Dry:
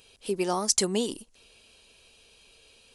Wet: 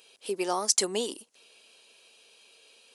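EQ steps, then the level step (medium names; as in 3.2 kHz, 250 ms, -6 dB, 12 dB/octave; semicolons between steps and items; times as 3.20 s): high-pass 350 Hz 12 dB/octave; 0.0 dB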